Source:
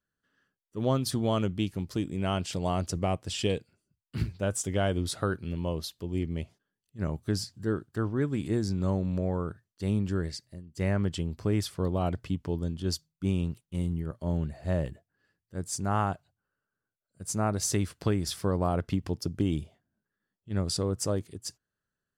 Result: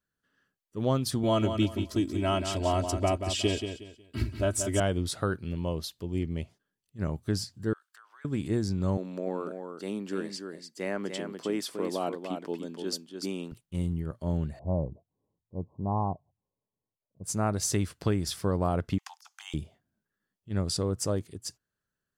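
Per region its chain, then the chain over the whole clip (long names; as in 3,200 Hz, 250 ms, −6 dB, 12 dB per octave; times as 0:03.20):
0:01.23–0:04.80: comb filter 3.1 ms, depth 87% + repeating echo 182 ms, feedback 28%, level −8 dB
0:07.73–0:08.25: high-pass filter 1,100 Hz 24 dB per octave + downward compressor, threshold −51 dBFS
0:08.97–0:13.52: high-pass filter 240 Hz 24 dB per octave + single-tap delay 294 ms −6.5 dB
0:14.59–0:17.24: Chebyshev low-pass filter 1,100 Hz, order 10 + highs frequency-modulated by the lows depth 0.11 ms
0:18.98–0:19.54: Butterworth high-pass 760 Hz 96 dB per octave + compressor whose output falls as the input rises −45 dBFS, ratio −0.5 + parametric band 6,400 Hz +8 dB 0.35 octaves
whole clip: no processing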